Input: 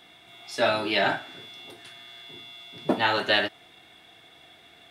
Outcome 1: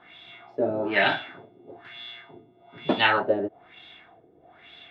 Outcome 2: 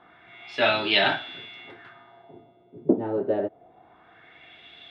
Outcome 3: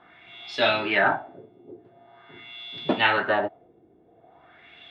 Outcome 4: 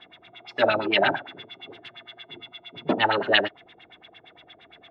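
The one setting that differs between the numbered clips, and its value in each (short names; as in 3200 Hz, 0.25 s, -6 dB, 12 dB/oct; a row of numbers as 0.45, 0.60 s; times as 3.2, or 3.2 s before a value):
LFO low-pass, rate: 1.1, 0.25, 0.45, 8.7 Hz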